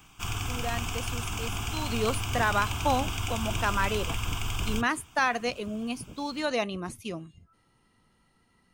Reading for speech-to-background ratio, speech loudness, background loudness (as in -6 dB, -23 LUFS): 1.5 dB, -31.0 LUFS, -32.5 LUFS